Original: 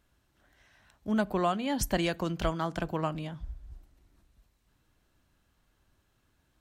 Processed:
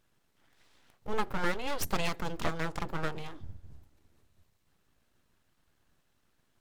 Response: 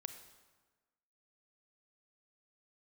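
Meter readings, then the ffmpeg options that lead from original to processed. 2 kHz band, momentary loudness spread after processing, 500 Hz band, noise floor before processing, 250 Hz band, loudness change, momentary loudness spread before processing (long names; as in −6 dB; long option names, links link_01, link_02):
+1.5 dB, 17 LU, −5.0 dB, −73 dBFS, −8.5 dB, −4.0 dB, 15 LU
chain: -af "bandreject=frequency=60:width_type=h:width=6,bandreject=frequency=120:width_type=h:width=6,bandreject=frequency=180:width_type=h:width=6,aeval=exprs='abs(val(0))':channel_layout=same"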